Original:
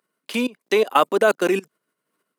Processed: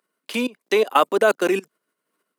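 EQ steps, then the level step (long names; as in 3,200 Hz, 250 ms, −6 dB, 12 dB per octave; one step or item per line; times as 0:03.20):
high-pass filter 190 Hz
0.0 dB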